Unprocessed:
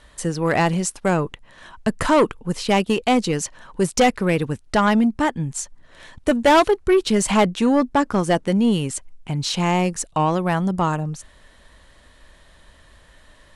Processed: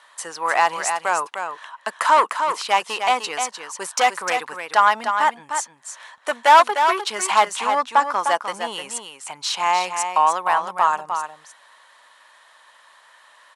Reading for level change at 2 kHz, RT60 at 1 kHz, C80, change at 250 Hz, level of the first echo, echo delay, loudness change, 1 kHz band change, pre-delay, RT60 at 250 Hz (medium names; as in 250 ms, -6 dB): +3.5 dB, no reverb, no reverb, -21.0 dB, -7.0 dB, 303 ms, 0.0 dB, +6.0 dB, no reverb, no reverb